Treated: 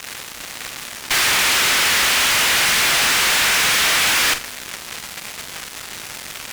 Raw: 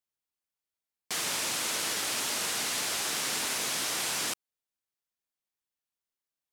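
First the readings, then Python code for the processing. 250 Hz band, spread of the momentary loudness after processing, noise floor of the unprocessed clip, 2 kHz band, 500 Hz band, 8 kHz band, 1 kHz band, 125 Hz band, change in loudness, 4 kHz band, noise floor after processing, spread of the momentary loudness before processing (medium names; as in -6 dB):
+10.5 dB, 16 LU, under -85 dBFS, +19.5 dB, +11.5 dB, +11.5 dB, +15.5 dB, +14.5 dB, +15.0 dB, +15.5 dB, -35 dBFS, 3 LU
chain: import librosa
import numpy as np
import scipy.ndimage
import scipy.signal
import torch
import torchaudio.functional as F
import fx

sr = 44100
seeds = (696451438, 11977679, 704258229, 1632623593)

p1 = fx.leveller(x, sr, passes=3)
p2 = fx.add_hum(p1, sr, base_hz=50, snr_db=23)
p3 = fx.quant_dither(p2, sr, seeds[0], bits=8, dither='triangular')
p4 = fx.bandpass_q(p3, sr, hz=2000.0, q=1.1)
p5 = fx.fuzz(p4, sr, gain_db=57.0, gate_db=-53.0)
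p6 = p5 + fx.room_flutter(p5, sr, wall_m=7.6, rt60_s=0.25, dry=0)
y = p6 * librosa.db_to_amplitude(-3.0)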